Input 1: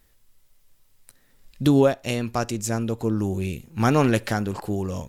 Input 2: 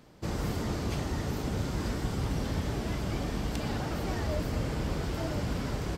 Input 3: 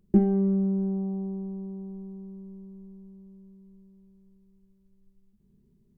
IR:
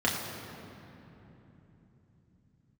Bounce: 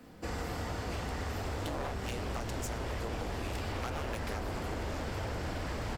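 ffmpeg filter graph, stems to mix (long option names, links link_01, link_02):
-filter_complex "[0:a]volume=-6.5dB[link_01];[1:a]asubboost=boost=4.5:cutoff=110,volume=-6dB,asplit=2[link_02][link_03];[link_03]volume=-4dB[link_04];[2:a]adelay=1600,volume=-8dB[link_05];[3:a]atrim=start_sample=2205[link_06];[link_04][link_06]afir=irnorm=-1:irlink=0[link_07];[link_01][link_02][link_05][link_07]amix=inputs=4:normalize=0,aeval=exprs='0.106*(abs(mod(val(0)/0.106+3,4)-2)-1)':channel_layout=same,acrossover=split=82|420[link_08][link_09][link_10];[link_08]acompressor=threshold=-41dB:ratio=4[link_11];[link_09]acompressor=threshold=-47dB:ratio=4[link_12];[link_10]acompressor=threshold=-38dB:ratio=4[link_13];[link_11][link_12][link_13]amix=inputs=3:normalize=0"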